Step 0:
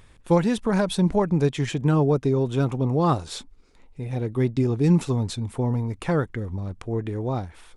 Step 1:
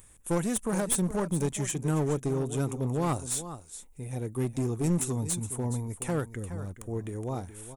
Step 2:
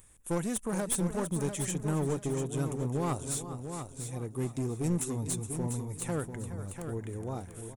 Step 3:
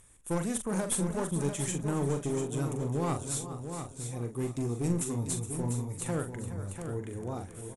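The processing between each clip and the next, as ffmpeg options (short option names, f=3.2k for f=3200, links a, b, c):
-af "aexciter=amount=11.6:drive=3.9:freq=6.7k,aecho=1:1:419:0.224,aeval=exprs='clip(val(0),-1,0.106)':c=same,volume=-7dB"
-af "aecho=1:1:694|1388|2082:0.398|0.0876|0.0193,volume=-3.5dB"
-filter_complex "[0:a]lowpass=f=12k:w=0.5412,lowpass=f=12k:w=1.3066,asplit=2[a][b];[b]adelay=42,volume=-7.5dB[c];[a][c]amix=inputs=2:normalize=0"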